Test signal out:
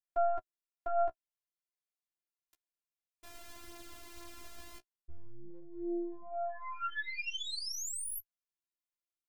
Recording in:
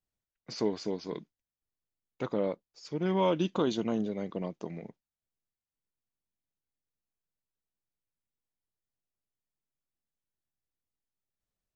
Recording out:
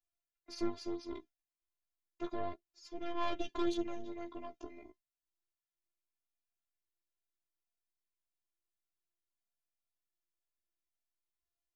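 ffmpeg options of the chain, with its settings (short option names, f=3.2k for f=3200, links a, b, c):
-af "aeval=exprs='0.168*(cos(1*acos(clip(val(0)/0.168,-1,1)))-cos(1*PI/2))+0.0376*(cos(4*acos(clip(val(0)/0.168,-1,1)))-cos(4*PI/2))':c=same,afftfilt=real='hypot(re,im)*cos(PI*b)':imag='0':win_size=512:overlap=0.75,flanger=delay=9.9:depth=6.6:regen=16:speed=0.31:shape=sinusoidal"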